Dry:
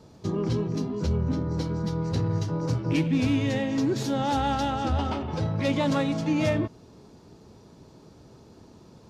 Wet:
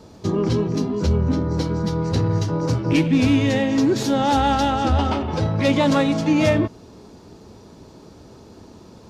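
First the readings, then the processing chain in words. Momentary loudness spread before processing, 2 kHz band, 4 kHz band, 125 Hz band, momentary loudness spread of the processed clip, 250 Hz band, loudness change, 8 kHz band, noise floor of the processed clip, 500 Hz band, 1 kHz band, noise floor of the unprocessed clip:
5 LU, +7.5 dB, +7.5 dB, +5.5 dB, 5 LU, +7.0 dB, +7.0 dB, +7.5 dB, -45 dBFS, +7.5 dB, +7.5 dB, -52 dBFS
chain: bell 140 Hz -7.5 dB 0.33 oct; gain +7.5 dB

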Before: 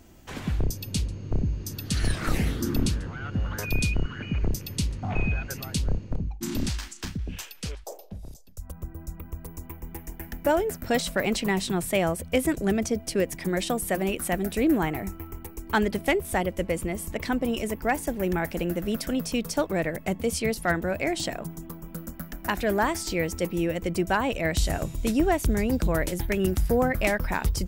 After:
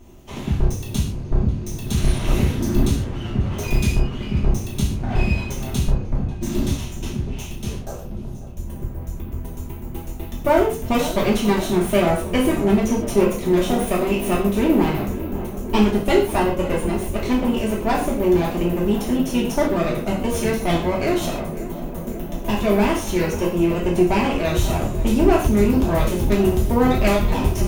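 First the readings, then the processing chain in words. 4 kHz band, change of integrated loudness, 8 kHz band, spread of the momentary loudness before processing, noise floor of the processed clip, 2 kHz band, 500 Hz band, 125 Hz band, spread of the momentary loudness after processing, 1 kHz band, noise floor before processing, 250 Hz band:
+3.5 dB, +6.5 dB, +1.5 dB, 15 LU, -32 dBFS, +1.0 dB, +7.0 dB, +7.5 dB, 12 LU, +6.0 dB, -45 dBFS, +8.0 dB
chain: minimum comb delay 0.32 ms; tilt shelf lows +3 dB, about 1500 Hz; on a send: darkening echo 0.542 s, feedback 84%, low-pass 1700 Hz, level -14 dB; on the sum: non-linear reverb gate 0.17 s falling, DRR -4.5 dB

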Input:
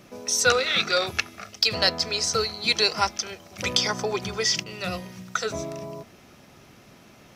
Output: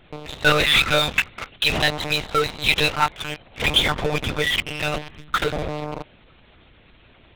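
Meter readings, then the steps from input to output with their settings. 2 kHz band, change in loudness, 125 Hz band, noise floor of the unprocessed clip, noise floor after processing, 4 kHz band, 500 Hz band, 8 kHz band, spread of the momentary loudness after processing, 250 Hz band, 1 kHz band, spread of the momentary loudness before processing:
+6.5 dB, +3.5 dB, +8.5 dB, -52 dBFS, -53 dBFS, +3.0 dB, +2.0 dB, -7.0 dB, 15 LU, +5.5 dB, +4.5 dB, 14 LU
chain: bin magnitudes rounded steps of 15 dB; high shelf 2100 Hz +9.5 dB; monotone LPC vocoder at 8 kHz 150 Hz; in parallel at -7 dB: fuzz box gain 30 dB, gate -34 dBFS; on the sum: gain -1.5 dB

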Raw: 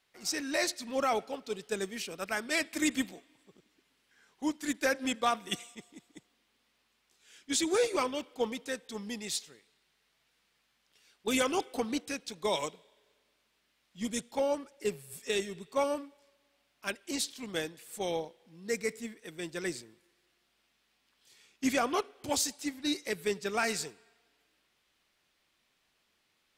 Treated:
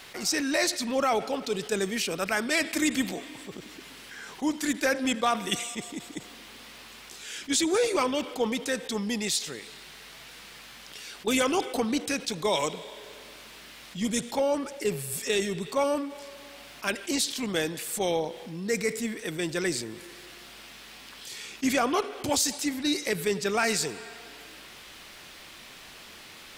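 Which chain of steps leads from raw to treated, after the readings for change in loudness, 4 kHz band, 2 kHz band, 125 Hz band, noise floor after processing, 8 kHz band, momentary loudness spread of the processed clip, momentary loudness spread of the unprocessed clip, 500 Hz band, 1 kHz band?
+5.5 dB, +6.5 dB, +5.5 dB, +10.0 dB, -48 dBFS, +6.5 dB, 19 LU, 10 LU, +5.0 dB, +4.5 dB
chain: fast leveller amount 50%; gain +2 dB

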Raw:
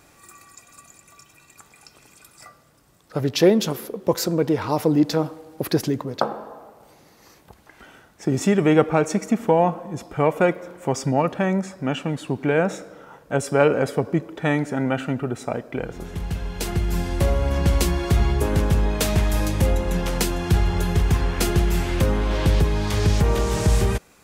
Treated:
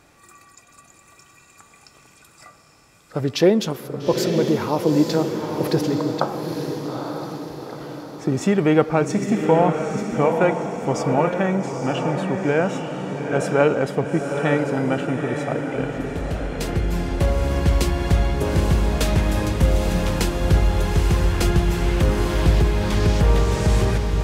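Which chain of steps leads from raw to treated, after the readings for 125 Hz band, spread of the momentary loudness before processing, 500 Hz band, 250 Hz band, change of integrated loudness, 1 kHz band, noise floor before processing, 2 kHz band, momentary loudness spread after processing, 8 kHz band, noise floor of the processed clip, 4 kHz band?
+1.5 dB, 10 LU, +1.5 dB, +1.5 dB, +1.0 dB, +1.5 dB, -54 dBFS, +1.0 dB, 9 LU, -2.0 dB, -52 dBFS, 0.0 dB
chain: high shelf 8900 Hz -9 dB; diffused feedback echo 0.871 s, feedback 52%, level -5 dB

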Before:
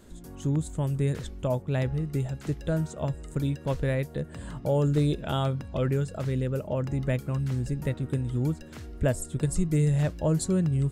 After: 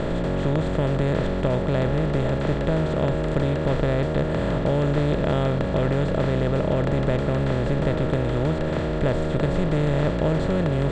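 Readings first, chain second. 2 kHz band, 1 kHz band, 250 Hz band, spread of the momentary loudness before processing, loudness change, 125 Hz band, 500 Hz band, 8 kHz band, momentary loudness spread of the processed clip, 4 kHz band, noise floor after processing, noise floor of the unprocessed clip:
+9.5 dB, +9.0 dB, +5.5 dB, 7 LU, +5.5 dB, +3.5 dB, +8.5 dB, n/a, 2 LU, +7.0 dB, -25 dBFS, -45 dBFS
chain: per-bin compression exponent 0.2; Bessel low-pass 3200 Hz, order 4; gain -2.5 dB

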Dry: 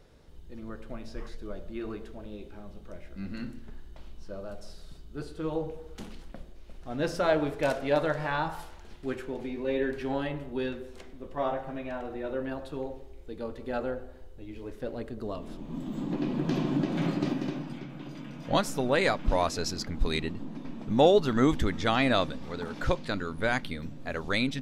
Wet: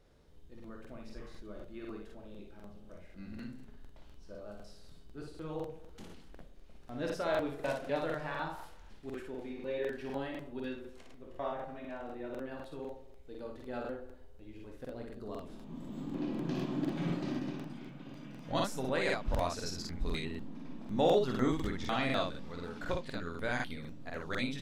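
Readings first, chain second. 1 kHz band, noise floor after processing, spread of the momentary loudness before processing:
-7.0 dB, -53 dBFS, 19 LU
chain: early reflections 24 ms -8.5 dB, 58 ms -3.5 dB; crackling interface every 0.25 s, samples 2048, repeat, from 0.55; gain -9 dB

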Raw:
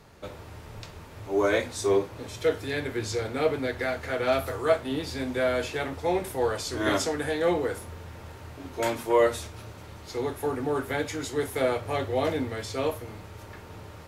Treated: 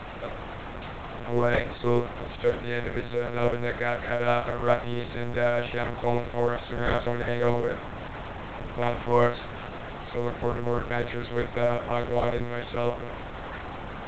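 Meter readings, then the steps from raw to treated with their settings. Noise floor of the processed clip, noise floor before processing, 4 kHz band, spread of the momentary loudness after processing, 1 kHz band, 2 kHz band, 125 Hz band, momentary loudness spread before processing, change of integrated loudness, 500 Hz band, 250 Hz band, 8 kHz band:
-38 dBFS, -45 dBFS, -3.0 dB, 12 LU, +2.0 dB, +1.0 dB, +5.0 dB, 18 LU, -1.0 dB, -0.5 dB, -0.5 dB, under -20 dB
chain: zero-crossing step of -31.5 dBFS; high shelf 2300 Hz +3.5 dB; notches 60/120/180/240 Hz; overdrive pedal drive 8 dB, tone 1100 Hz, clips at -9.5 dBFS; buzz 60 Hz, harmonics 7, -57 dBFS -1 dB/oct; reverse echo 0.252 s -21.5 dB; monotone LPC vocoder at 8 kHz 120 Hz; µ-law 128 kbps 16000 Hz

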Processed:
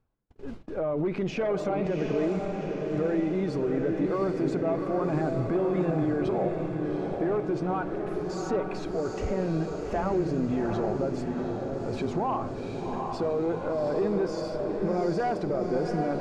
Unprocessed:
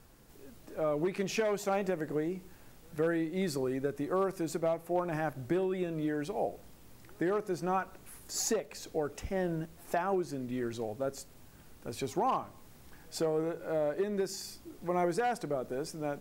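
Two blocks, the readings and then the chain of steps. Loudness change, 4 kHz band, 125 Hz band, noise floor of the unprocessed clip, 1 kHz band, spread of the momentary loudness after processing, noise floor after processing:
+5.0 dB, -2.0 dB, +9.0 dB, -56 dBFS, +3.0 dB, 5 LU, -36 dBFS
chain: bin magnitudes rounded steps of 15 dB; in parallel at -9.5 dB: sine folder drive 5 dB, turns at -19 dBFS; on the sum: limiter -27.5 dBFS, peak gain reduction 9.5 dB; gate -46 dBFS, range -46 dB; tape spacing loss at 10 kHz 30 dB; diffused feedback echo 0.761 s, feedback 61%, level -4 dB; reverse; upward compressor, threshold -37 dBFS; reverse; notch 1800 Hz, Q 16; gain +7 dB

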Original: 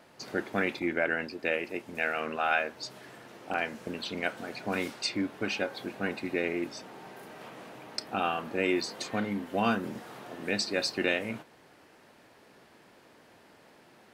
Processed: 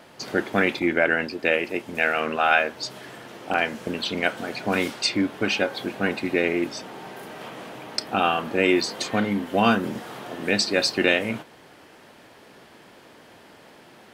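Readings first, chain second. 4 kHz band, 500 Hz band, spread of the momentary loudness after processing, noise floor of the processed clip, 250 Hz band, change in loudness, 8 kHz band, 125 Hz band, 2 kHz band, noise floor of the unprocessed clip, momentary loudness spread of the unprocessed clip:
+9.0 dB, +8.0 dB, 16 LU, -50 dBFS, +8.0 dB, +8.0 dB, +8.0 dB, +8.0 dB, +8.0 dB, -59 dBFS, 16 LU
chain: bell 3200 Hz +4 dB 0.22 oct; gain +8 dB

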